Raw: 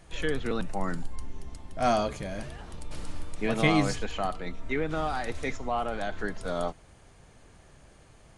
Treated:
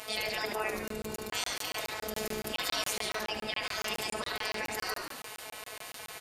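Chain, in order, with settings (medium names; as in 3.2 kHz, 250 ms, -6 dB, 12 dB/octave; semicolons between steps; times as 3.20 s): robot voice 160 Hz; comb 5.7 ms, depth 30%; spectral gate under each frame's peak -20 dB weak; bass shelf 180 Hz -9 dB; in parallel at -0.5 dB: gain riding within 4 dB; on the sum: small resonant body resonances 350/510/2700 Hz, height 9 dB, ringing for 95 ms; on a send: frequency-shifting echo 99 ms, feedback 49%, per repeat -46 Hz, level -10 dB; on the sum: speed mistake 33 rpm record played at 45 rpm; crackling interface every 0.14 s, samples 1024, zero, from 0.88 s; level flattener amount 50%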